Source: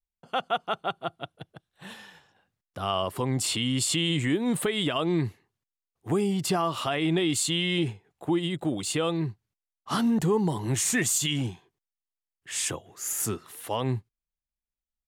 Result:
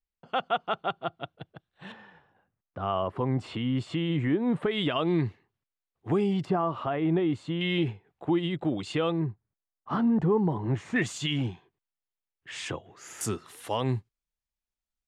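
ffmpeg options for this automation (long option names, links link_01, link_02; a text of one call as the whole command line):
ffmpeg -i in.wav -af "asetnsamples=nb_out_samples=441:pad=0,asendcmd='1.92 lowpass f 1600;4.71 lowpass f 3400;6.45 lowpass f 1300;7.61 lowpass f 3000;9.12 lowpass f 1400;10.96 lowpass f 3300;13.21 lowpass f 8300',lowpass=3600" out.wav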